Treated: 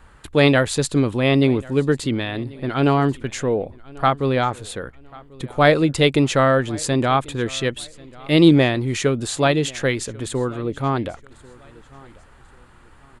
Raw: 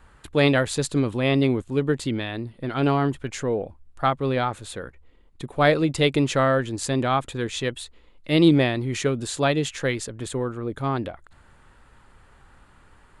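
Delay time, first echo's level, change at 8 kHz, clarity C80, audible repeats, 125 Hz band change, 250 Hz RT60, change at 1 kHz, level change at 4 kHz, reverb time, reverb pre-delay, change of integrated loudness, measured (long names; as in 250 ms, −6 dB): 1,091 ms, −23.5 dB, +4.0 dB, no reverb audible, 2, +4.0 dB, no reverb audible, +4.0 dB, +4.0 dB, no reverb audible, no reverb audible, +4.0 dB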